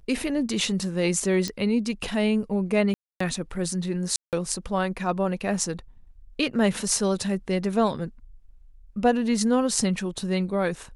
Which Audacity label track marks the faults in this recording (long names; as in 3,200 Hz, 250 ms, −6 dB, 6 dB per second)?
1.480000	1.480000	click −15 dBFS
2.940000	3.200000	drop-out 264 ms
4.160000	4.330000	drop-out 168 ms